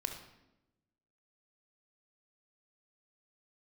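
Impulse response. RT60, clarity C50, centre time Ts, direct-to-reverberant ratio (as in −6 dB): 0.95 s, 6.5 dB, 22 ms, 5.0 dB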